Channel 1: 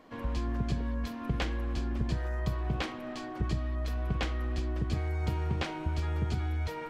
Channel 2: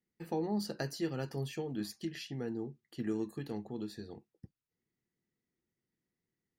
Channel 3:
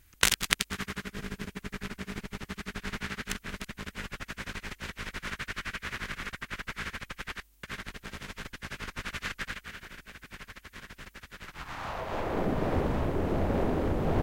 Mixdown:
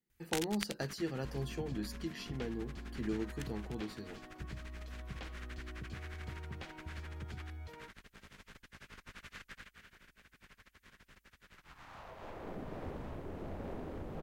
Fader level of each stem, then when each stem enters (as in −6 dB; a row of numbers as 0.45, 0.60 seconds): −14.5, −2.0, −15.0 decibels; 1.00, 0.00, 0.10 seconds